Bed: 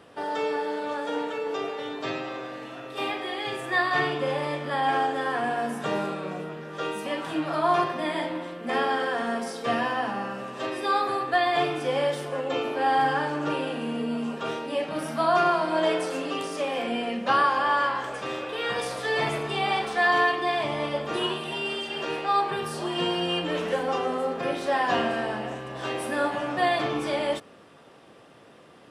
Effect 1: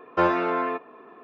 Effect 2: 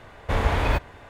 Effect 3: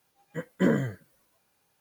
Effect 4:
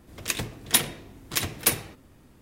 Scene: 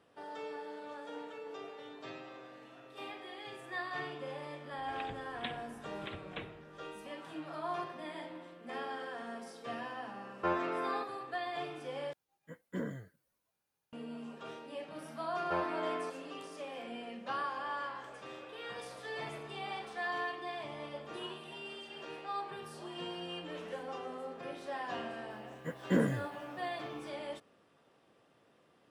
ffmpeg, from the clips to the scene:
-filter_complex "[1:a]asplit=2[a][b];[3:a]asplit=2[c][d];[0:a]volume=-15.5dB[e];[4:a]aresample=8000,aresample=44100[f];[e]asplit=2[g][h];[g]atrim=end=12.134[i];[c]atrim=end=1.8,asetpts=PTS-STARTPTS,volume=-15dB[j];[h]atrim=start=13.926[k];[f]atrim=end=2.41,asetpts=PTS-STARTPTS,volume=-15.5dB,afade=t=in:d=0.004:c=hsin,afade=t=out:st=2.406:d=0.004:c=hsin,adelay=4700[l];[a]atrim=end=1.23,asetpts=PTS-STARTPTS,volume=-11.5dB,afade=t=in:d=0.004:c=hsin,afade=t=out:st=1.226:d=0.004:c=hsin,adelay=452466S[m];[b]atrim=end=1.23,asetpts=PTS-STARTPTS,volume=-13.5dB,afade=t=in:d=0.004:c=hsin,afade=t=out:st=1.226:d=0.004:c=hsin,adelay=15330[n];[d]atrim=end=1.8,asetpts=PTS-STARTPTS,volume=-5.5dB,afade=t=in:d=0.004:c=hsin,afade=t=out:st=1.796:d=0.004:c=hsin,adelay=25300[o];[i][j]acrossfade=d=0.004:c1=hsin:c2=hsin[p];[p][k]acrossfade=d=0.004:c1=hsin:c2=hsin[q];[q][l][m][n][o]amix=inputs=5:normalize=0"

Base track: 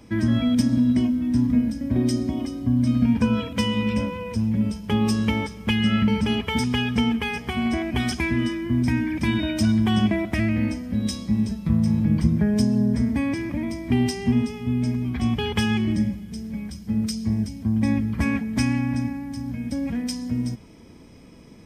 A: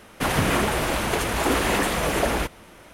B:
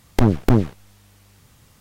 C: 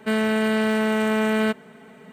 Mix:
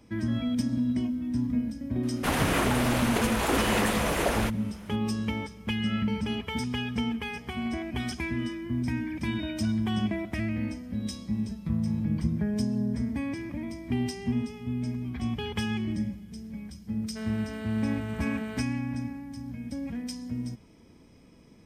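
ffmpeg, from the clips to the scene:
-filter_complex "[0:a]volume=-8dB[a];[1:a]atrim=end=2.93,asetpts=PTS-STARTPTS,volume=-4dB,afade=t=in:d=0.004:c=hsin,afade=t=out:st=2.926:d=0.004:c=hsin,adelay=2030[b];[3:a]atrim=end=2.12,asetpts=PTS-STARTPTS,volume=-17dB,afade=t=in:d=0.004:c=hsin,afade=t=out:st=2.116:d=0.004:c=hsin,adelay=17090[c];[a][b][c]amix=inputs=3:normalize=0"

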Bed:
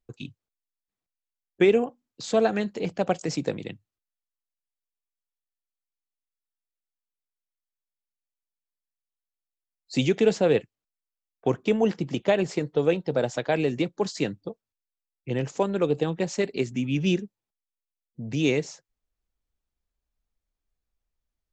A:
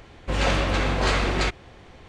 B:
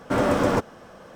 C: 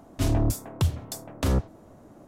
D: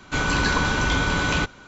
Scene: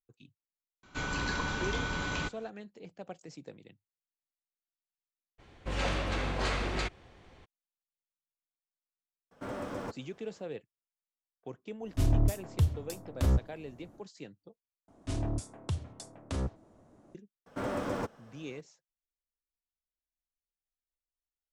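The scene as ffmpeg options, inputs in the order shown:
-filter_complex "[2:a]asplit=2[a][b];[3:a]asplit=2[c][d];[0:a]volume=-19.5dB[e];[c]lowshelf=f=120:g=10[f];[d]aresample=22050,aresample=44100[g];[e]asplit=2[h][i];[h]atrim=end=14.884[j];[g]atrim=end=2.27,asetpts=PTS-STARTPTS,volume=-10dB[k];[i]atrim=start=17.146[l];[4:a]atrim=end=1.67,asetpts=PTS-STARTPTS,volume=-12dB,afade=t=in:d=0.004:c=hsin,afade=t=out:st=1.666:d=0.004:c=hsin,adelay=830[m];[1:a]atrim=end=2.08,asetpts=PTS-STARTPTS,volume=-9.5dB,afade=t=in:d=0.02,afade=t=out:st=2.06:d=0.02,adelay=5380[n];[a]atrim=end=1.15,asetpts=PTS-STARTPTS,volume=-17.5dB,afade=t=in:d=0.004:c=hsin,afade=t=out:st=1.146:d=0.004:c=hsin,adelay=9310[o];[f]atrim=end=2.27,asetpts=PTS-STARTPTS,volume=-8.5dB,afade=t=in:d=0.1,afade=t=out:st=2.17:d=0.1,adelay=519498S[p];[b]atrim=end=1.15,asetpts=PTS-STARTPTS,volume=-13dB,afade=t=in:d=0.004:c=hsin,afade=t=out:st=1.146:d=0.004:c=hsin,adelay=17460[q];[j][k]acrossfade=d=0.004:c1=hsin:c2=hsin[r];[r][l]acrossfade=d=0.004:c1=hsin:c2=hsin[s];[s][m][n][o][p][q]amix=inputs=6:normalize=0"

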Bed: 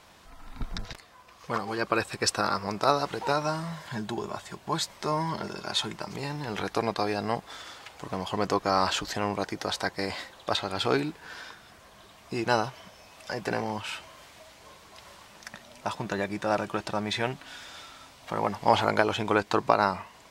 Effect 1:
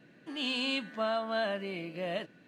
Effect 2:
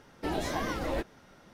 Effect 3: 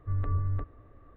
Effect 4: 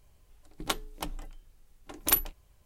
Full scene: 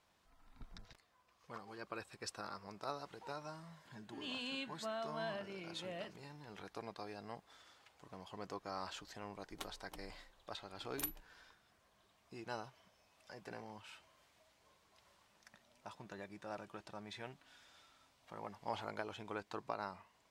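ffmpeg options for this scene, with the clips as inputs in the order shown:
-filter_complex "[0:a]volume=-20dB[a];[1:a]atrim=end=2.47,asetpts=PTS-STARTPTS,volume=-11dB,afade=t=in:d=0.004:c=hsin,afade=t=out:st=2.466:d=0.004:c=hsin,adelay=169785S[b];[4:a]atrim=end=2.65,asetpts=PTS-STARTPTS,volume=-17.5dB,afade=t=in:d=0.004:c=hsin,afade=t=out:st=2.646:d=0.004:c=hsin,adelay=8910[c];[a][b][c]amix=inputs=3:normalize=0"

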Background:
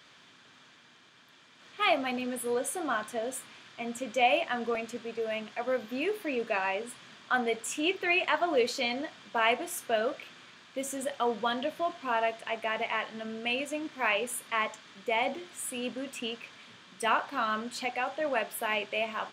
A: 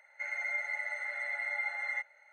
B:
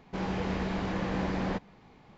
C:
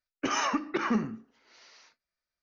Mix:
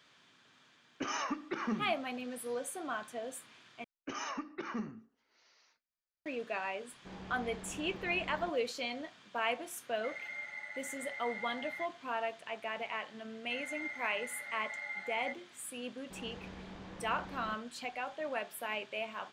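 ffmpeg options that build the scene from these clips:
-filter_complex "[3:a]asplit=2[a][b];[2:a]asplit=2[c][d];[1:a]asplit=2[e][f];[0:a]volume=-7.5dB,asplit=2[g][h];[g]atrim=end=3.844[i];[b]atrim=end=2.42,asetpts=PTS-STARTPTS,volume=-11.5dB[j];[h]atrim=start=6.256[k];[a]atrim=end=2.42,asetpts=PTS-STARTPTS,volume=-8dB,afade=t=in:d=0.004:c=hsin,afade=t=out:st=2.416:d=0.004:c=hsin,adelay=770[l];[c]atrim=end=2.17,asetpts=PTS-STARTPTS,volume=-15.5dB,afade=t=in:d=0.004:c=hsin,afade=t=out:st=2.166:d=0.004:c=hsin,adelay=6920[m];[e]atrim=end=2.32,asetpts=PTS-STARTPTS,volume=-8.5dB,afade=t=in:d=0.004:c=hsin,afade=t=out:st=2.316:d=0.004:c=hsin,adelay=9840[n];[f]atrim=end=2.32,asetpts=PTS-STARTPTS,volume=-7dB,afade=t=in:d=0.004:c=hsin,afade=t=out:st=2.316:d=0.004:c=hsin,adelay=13310[o];[d]atrim=end=2.17,asetpts=PTS-STARTPTS,volume=-16.5dB,afade=t=in:d=0.004:c=hsin,afade=t=out:st=2.166:d=0.004:c=hsin,adelay=15970[p];[i][j]acrossfade=d=0.004:c1=hsin:c2=hsin[q];[q][k]acrossfade=d=0.004:c1=hsin:c2=hsin[r];[r][l][m][n][o][p]amix=inputs=6:normalize=0"

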